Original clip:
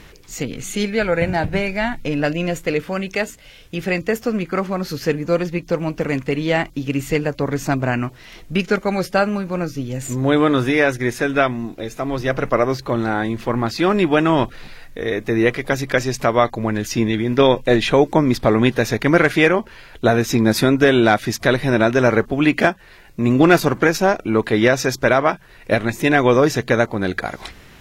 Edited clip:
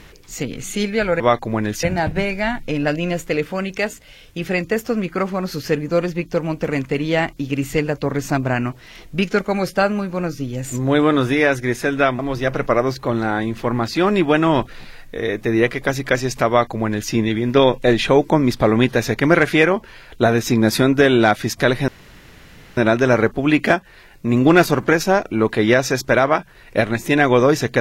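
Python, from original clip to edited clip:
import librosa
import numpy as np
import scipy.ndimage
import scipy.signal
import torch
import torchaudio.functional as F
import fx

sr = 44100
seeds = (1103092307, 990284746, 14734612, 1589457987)

y = fx.edit(x, sr, fx.cut(start_s=11.56, length_s=0.46),
    fx.duplicate(start_s=16.31, length_s=0.63, to_s=1.2),
    fx.insert_room_tone(at_s=21.71, length_s=0.89), tone=tone)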